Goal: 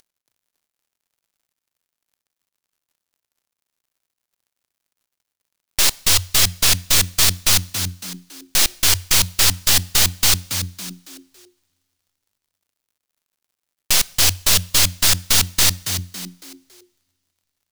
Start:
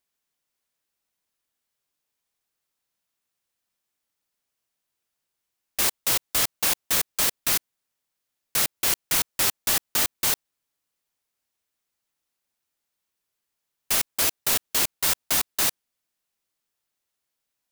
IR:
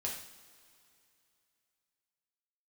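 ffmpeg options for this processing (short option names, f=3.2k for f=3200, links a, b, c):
-filter_complex "[0:a]equalizer=f=4.6k:t=o:w=2.4:g=11.5,acompressor=mode=upward:threshold=-28dB:ratio=2.5,aeval=exprs='0.398*(cos(1*acos(clip(val(0)/0.398,-1,1)))-cos(1*PI/2))+0.126*(cos(6*acos(clip(val(0)/0.398,-1,1)))-cos(6*PI/2))':c=same,aeval=exprs='sgn(val(0))*max(abs(val(0))-0.00944,0)':c=same,asplit=5[a][b][c][d][e];[b]adelay=278,afreqshift=89,volume=-8.5dB[f];[c]adelay=556,afreqshift=178,volume=-16.9dB[g];[d]adelay=834,afreqshift=267,volume=-25.3dB[h];[e]adelay=1112,afreqshift=356,volume=-33.7dB[i];[a][f][g][h][i]amix=inputs=5:normalize=0,asplit=2[j][k];[1:a]atrim=start_sample=2205[l];[k][l]afir=irnorm=-1:irlink=0,volume=-20dB[m];[j][m]amix=inputs=2:normalize=0,volume=-1dB"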